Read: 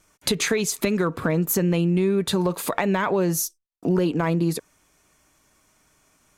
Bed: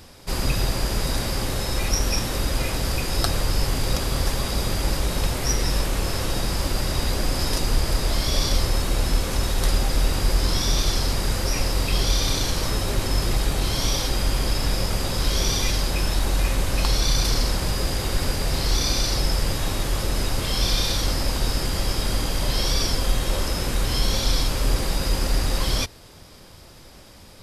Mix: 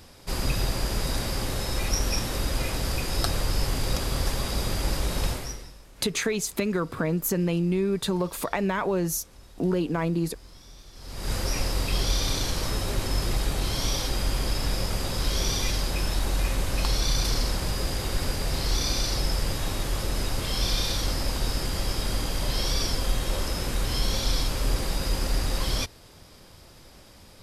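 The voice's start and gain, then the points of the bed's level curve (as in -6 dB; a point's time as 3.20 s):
5.75 s, -4.0 dB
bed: 5.31 s -3.5 dB
5.78 s -27 dB
10.91 s -27 dB
11.32 s -4 dB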